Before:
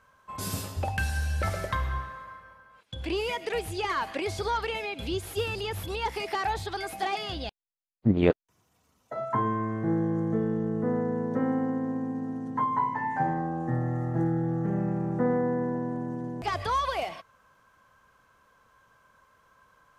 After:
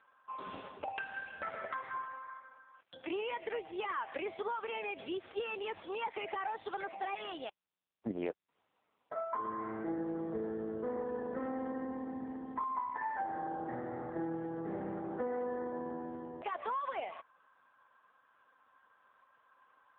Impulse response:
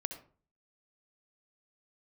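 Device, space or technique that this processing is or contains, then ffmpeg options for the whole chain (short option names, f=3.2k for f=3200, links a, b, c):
voicemail: -filter_complex "[0:a]asettb=1/sr,asplit=3[a][b][c];[a]atrim=end=2.984[d];[b]atrim=start=2.98:end=3.51,asetpts=PTS-STARTPTS,afade=t=in:d=0.004:c=qsin,afade=t=out:st=0.526:d=0.004:c=qsin,bandreject=f=50:t=h:w=6,bandreject=f=100:t=h:w=6,bandreject=f=150:t=h:w=6,bandreject=f=200:t=h:w=6[e];[c]atrim=start=3.506[f];[d][e]acrossfade=d=0.004:c1=hsin:c2=qsin[g];[g][f]acrossfade=d=0.004:c1=qsin:c2=hsin,highpass=370,lowpass=3.1k,acompressor=threshold=-31dB:ratio=8,volume=-1.5dB" -ar 8000 -c:a libopencore_amrnb -b:a 5900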